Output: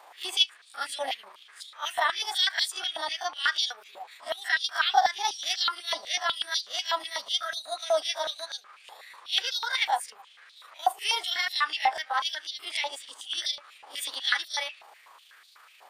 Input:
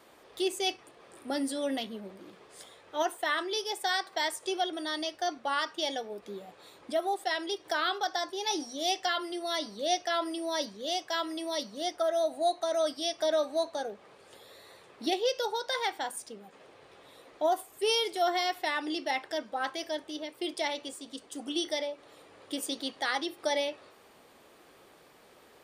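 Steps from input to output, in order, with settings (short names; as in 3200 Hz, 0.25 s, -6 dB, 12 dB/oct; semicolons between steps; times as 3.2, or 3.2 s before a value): spectral swells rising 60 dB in 0.32 s; granular stretch 0.62×, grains 75 ms; stepped high-pass 8.1 Hz 810–4000 Hz; gain +1.5 dB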